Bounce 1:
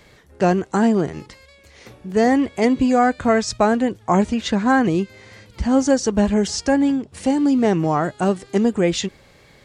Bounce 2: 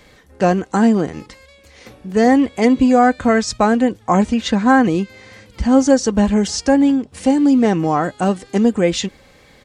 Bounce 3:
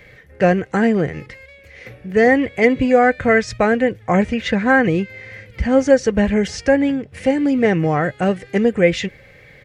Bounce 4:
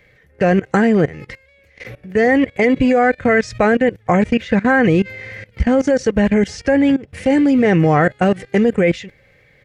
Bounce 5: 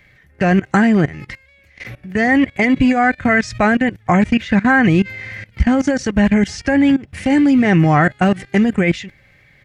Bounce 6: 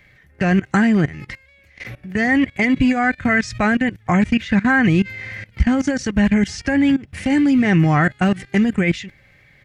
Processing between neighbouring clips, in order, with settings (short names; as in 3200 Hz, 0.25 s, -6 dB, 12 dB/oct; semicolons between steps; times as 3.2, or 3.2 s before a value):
comb 3.9 ms, depth 32%; gain +2 dB
ten-band EQ 125 Hz +10 dB, 250 Hz -7 dB, 500 Hz +6 dB, 1000 Hz -9 dB, 2000 Hz +12 dB, 4000 Hz -5 dB, 8000 Hz -9 dB; gain -1 dB
level quantiser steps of 20 dB; gain +7.5 dB
bell 480 Hz -13.5 dB 0.44 oct; gain +2.5 dB
dynamic EQ 620 Hz, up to -5 dB, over -30 dBFS, Q 0.78; gain -1 dB